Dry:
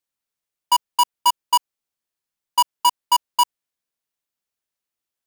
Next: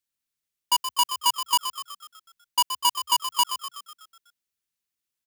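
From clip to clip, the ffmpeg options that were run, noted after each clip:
ffmpeg -i in.wav -filter_complex "[0:a]equalizer=frequency=690:width_type=o:width=1.8:gain=-9.5,asplit=8[link_01][link_02][link_03][link_04][link_05][link_06][link_07][link_08];[link_02]adelay=124,afreqshift=63,volume=-9.5dB[link_09];[link_03]adelay=248,afreqshift=126,volume=-14.5dB[link_10];[link_04]adelay=372,afreqshift=189,volume=-19.6dB[link_11];[link_05]adelay=496,afreqshift=252,volume=-24.6dB[link_12];[link_06]adelay=620,afreqshift=315,volume=-29.6dB[link_13];[link_07]adelay=744,afreqshift=378,volume=-34.7dB[link_14];[link_08]adelay=868,afreqshift=441,volume=-39.7dB[link_15];[link_01][link_09][link_10][link_11][link_12][link_13][link_14][link_15]amix=inputs=8:normalize=0" out.wav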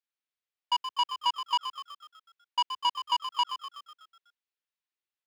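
ffmpeg -i in.wav -filter_complex "[0:a]acrossover=split=7300[link_01][link_02];[link_02]acompressor=threshold=-37dB:ratio=4:attack=1:release=60[link_03];[link_01][link_03]amix=inputs=2:normalize=0,acrossover=split=340 4500:gain=0.0631 1 0.126[link_04][link_05][link_06];[link_04][link_05][link_06]amix=inputs=3:normalize=0,volume=-3.5dB" out.wav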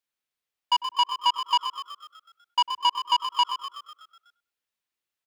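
ffmpeg -i in.wav -filter_complex "[0:a]asplit=2[link_01][link_02];[link_02]adelay=100,lowpass=frequency=950:poles=1,volume=-13dB,asplit=2[link_03][link_04];[link_04]adelay=100,lowpass=frequency=950:poles=1,volume=0.33,asplit=2[link_05][link_06];[link_06]adelay=100,lowpass=frequency=950:poles=1,volume=0.33[link_07];[link_01][link_03][link_05][link_07]amix=inputs=4:normalize=0,volume=5dB" out.wav

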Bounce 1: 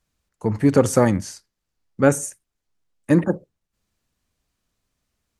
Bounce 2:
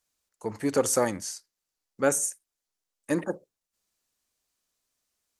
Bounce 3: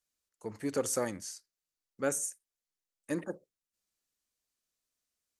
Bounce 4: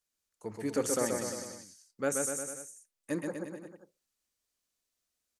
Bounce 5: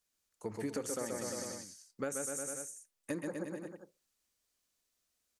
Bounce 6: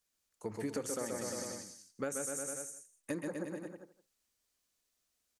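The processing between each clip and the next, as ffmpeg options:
ffmpeg -i in.wav -af "bass=frequency=250:gain=-13,treble=frequency=4000:gain=8,volume=-6dB" out.wav
ffmpeg -i in.wav -af "equalizer=frequency=870:width_type=o:width=0.78:gain=-4,volume=-7dB" out.wav
ffmpeg -i in.wav -af "aecho=1:1:130|247|352.3|447.1|532.4:0.631|0.398|0.251|0.158|0.1" out.wav
ffmpeg -i in.wav -af "acompressor=threshold=-37dB:ratio=8,volume=2.5dB" out.wav
ffmpeg -i in.wav -af "aecho=1:1:164:0.141" out.wav

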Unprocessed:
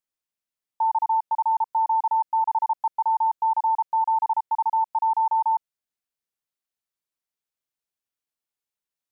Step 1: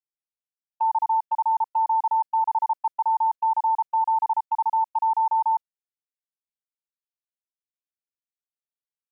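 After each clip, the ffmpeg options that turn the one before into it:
ffmpeg -i in.wav -af "agate=range=-19dB:threshold=-27dB:ratio=16:detection=peak" out.wav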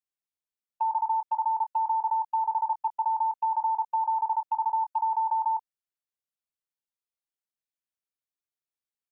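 ffmpeg -i in.wav -filter_complex "[0:a]asplit=2[link_01][link_02];[link_02]adelay=24,volume=-11.5dB[link_03];[link_01][link_03]amix=inputs=2:normalize=0,volume=-3dB" out.wav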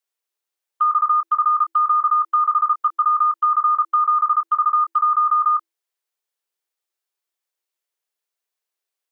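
ffmpeg -i in.wav -af "afreqshift=330,volume=9dB" out.wav

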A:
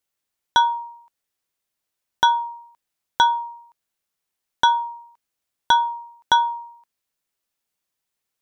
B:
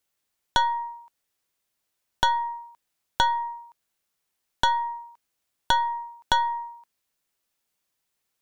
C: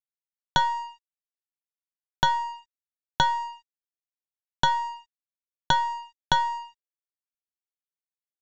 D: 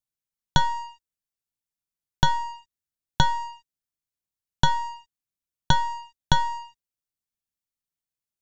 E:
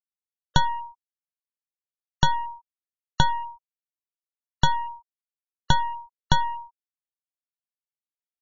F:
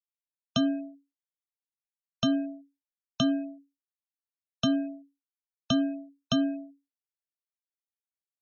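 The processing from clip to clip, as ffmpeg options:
ffmpeg -i in.wav -af "acompressor=threshold=-24dB:ratio=3,aeval=exprs='(tanh(7.08*val(0)+0.7)-tanh(0.7))/7.08':channel_layout=same,volume=6.5dB" out.wav
ffmpeg -i in.wav -af "equalizer=frequency=150:width=2.9:gain=15,aresample=16000,aeval=exprs='sgn(val(0))*max(abs(val(0))-0.00841,0)':channel_layout=same,aresample=44100" out.wav
ffmpeg -i in.wav -af "bass=frequency=250:gain=12,treble=frequency=4000:gain=5,volume=-1dB" out.wav
ffmpeg -i in.wav -af "afftfilt=real='re*gte(hypot(re,im),0.0282)':imag='im*gte(hypot(re,im),0.0282)':win_size=1024:overlap=0.75" out.wav
ffmpeg -i in.wav -af "equalizer=frequency=420:width=0.34:gain=-13,afreqshift=-280,agate=range=-33dB:threshold=-60dB:ratio=3:detection=peak,volume=-3dB" out.wav

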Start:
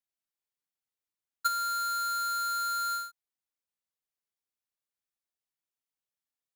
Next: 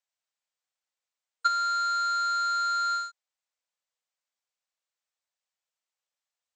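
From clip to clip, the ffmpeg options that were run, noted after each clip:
ffmpeg -i in.wav -filter_complex "[0:a]afftfilt=real='re*between(b*sr/4096,470,8500)':imag='im*between(b*sr/4096,470,8500)':win_size=4096:overlap=0.75,acrossover=split=5000[link_01][link_02];[link_02]acompressor=threshold=-51dB:ratio=4:attack=1:release=60[link_03];[link_01][link_03]amix=inputs=2:normalize=0,volume=4.5dB" out.wav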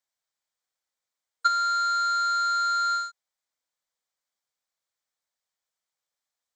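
ffmpeg -i in.wav -af "equalizer=frequency=2700:width=6.9:gain=-9,volume=2.5dB" out.wav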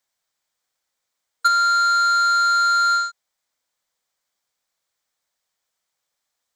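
ffmpeg -i in.wav -af "asoftclip=type=tanh:threshold=-20dB,volume=8.5dB" out.wav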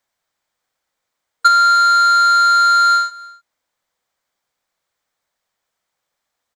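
ffmpeg -i in.wav -filter_complex "[0:a]asplit=2[link_01][link_02];[link_02]adynamicsmooth=sensitivity=1.5:basefreq=3700,volume=1dB[link_03];[link_01][link_03]amix=inputs=2:normalize=0,aecho=1:1:299:0.0708" out.wav

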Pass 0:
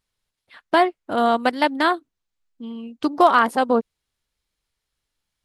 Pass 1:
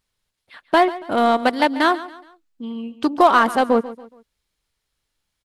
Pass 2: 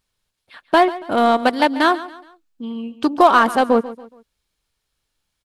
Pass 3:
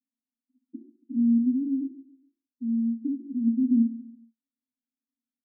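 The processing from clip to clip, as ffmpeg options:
ffmpeg -i in.wav -filter_complex "[0:a]asplit=2[link_01][link_02];[link_02]asoftclip=type=hard:threshold=-20dB,volume=-7dB[link_03];[link_01][link_03]amix=inputs=2:normalize=0,aecho=1:1:140|280|420:0.15|0.0569|0.0216" out.wav
ffmpeg -i in.wav -af "bandreject=frequency=2000:width=17,volume=1.5dB" out.wav
ffmpeg -i in.wav -af "asuperpass=centerf=250:order=8:qfactor=4.4,aecho=1:1:43|61:0.266|0.316" out.wav

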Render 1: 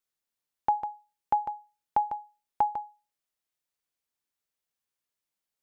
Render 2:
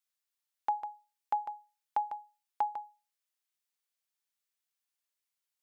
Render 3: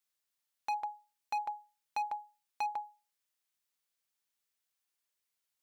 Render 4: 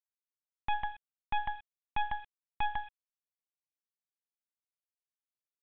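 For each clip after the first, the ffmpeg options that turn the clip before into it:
ffmpeg -i in.wav -af "highpass=frequency=1400:poles=1" out.wav
ffmpeg -i in.wav -af "asoftclip=type=hard:threshold=-32.5dB,volume=2dB" out.wav
ffmpeg -i in.wav -af "acrusher=bits=6:dc=4:mix=0:aa=0.000001,aresample=8000,aresample=44100,volume=6.5dB" out.wav

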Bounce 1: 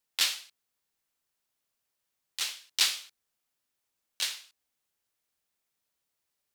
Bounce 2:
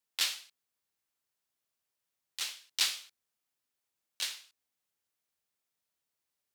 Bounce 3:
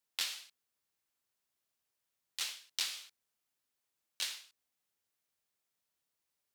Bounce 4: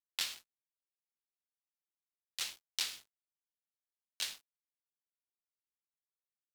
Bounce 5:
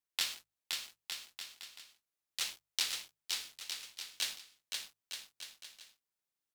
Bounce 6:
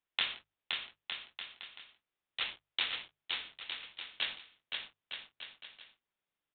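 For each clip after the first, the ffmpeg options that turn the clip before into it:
ffmpeg -i in.wav -af "highpass=52,volume=-4dB" out.wav
ffmpeg -i in.wav -af "acompressor=threshold=-32dB:ratio=6" out.wav
ffmpeg -i in.wav -af "aeval=exprs='sgn(val(0))*max(abs(val(0))-0.00398,0)':channel_layout=same,volume=1dB" out.wav
ffmpeg -i in.wav -af "bandreject=frequency=50:width_type=h:width=6,bandreject=frequency=100:width_type=h:width=6,bandreject=frequency=150:width_type=h:width=6,aecho=1:1:520|910|1202|1422|1586:0.631|0.398|0.251|0.158|0.1,volume=2dB" out.wav
ffmpeg -i in.wav -af "aresample=8000,aresample=44100,volume=5dB" out.wav

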